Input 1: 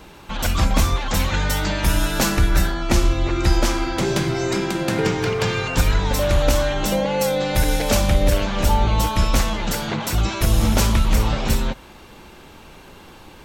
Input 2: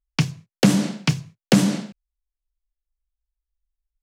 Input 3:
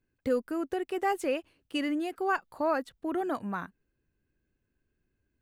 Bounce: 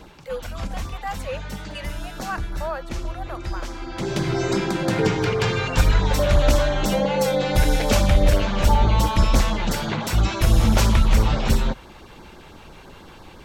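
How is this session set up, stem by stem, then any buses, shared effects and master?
+1.0 dB, 0.00 s, no send, high shelf 7200 Hz -9 dB; LFO notch sine 6 Hz 220–2900 Hz; auto duck -13 dB, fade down 0.40 s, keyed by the third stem
-19.0 dB, 0.00 s, no send, level quantiser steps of 13 dB
-0.5 dB, 0.00 s, no send, steep high-pass 480 Hz 96 dB/oct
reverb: off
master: dry

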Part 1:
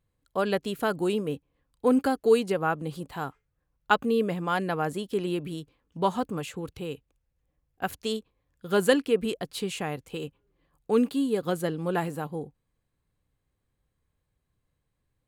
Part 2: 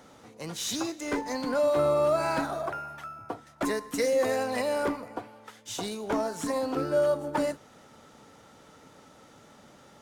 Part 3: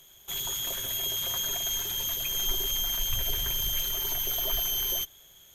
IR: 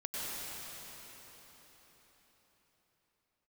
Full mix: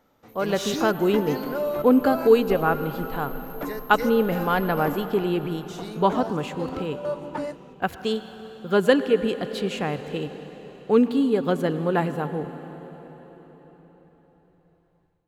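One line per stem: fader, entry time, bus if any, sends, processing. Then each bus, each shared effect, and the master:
-5.0 dB, 0.00 s, send -13.5 dB, bell 9100 Hz -7.5 dB 0.29 oct
+1.5 dB, 0.00 s, no send, step gate ".xxx.xxx.x" 66 bpm -12 dB; auto duck -13 dB, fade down 1.75 s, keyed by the first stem
-14.0 dB, 0.00 s, send -9.5 dB, inverse Chebyshev band-stop 110–3400 Hz, stop band 70 dB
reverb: on, RT60 4.7 s, pre-delay 89 ms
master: high shelf 5600 Hz -11.5 dB; AGC gain up to 9 dB

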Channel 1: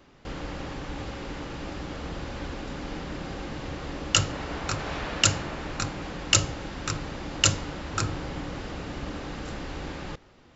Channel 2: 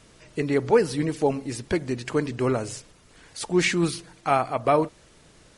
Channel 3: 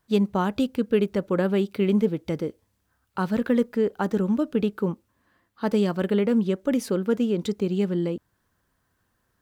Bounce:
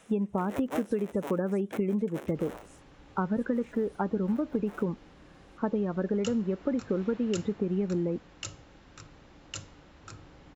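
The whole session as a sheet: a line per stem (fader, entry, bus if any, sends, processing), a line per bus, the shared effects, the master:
-19.0 dB, 2.10 s, no bus, no send, notch 4700 Hz, Q 22
2.23 s -0.5 dB -> 3.03 s -13 dB, 0.00 s, bus A, no send, cycle switcher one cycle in 3, inverted; HPF 240 Hz 12 dB/oct; auto duck -12 dB, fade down 0.40 s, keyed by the third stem
+2.5 dB, 0.00 s, bus A, no send, LPF 2000 Hz; loudest bins only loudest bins 32
bus A: 0.0 dB, bell 4600 Hz -13.5 dB 0.39 oct; compressor 12:1, threshold -25 dBFS, peak gain reduction 12.5 dB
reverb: off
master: dry

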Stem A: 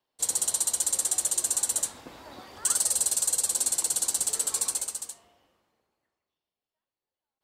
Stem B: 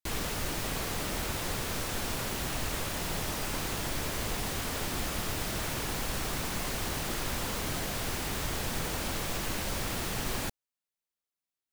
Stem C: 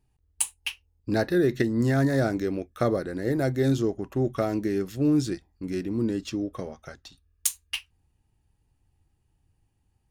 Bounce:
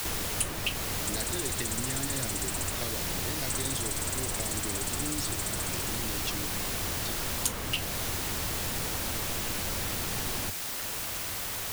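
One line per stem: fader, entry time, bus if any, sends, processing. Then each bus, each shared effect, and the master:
-10.0 dB, 0.85 s, no send, dry
-3.0 dB, 0.00 s, no send, requantised 6-bit, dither triangular; bell 91 Hz +7 dB 0.36 oct
-15.0 dB, 0.00 s, no send, resonant high shelf 1900 Hz +14 dB, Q 1.5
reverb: off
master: three-band squash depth 70%

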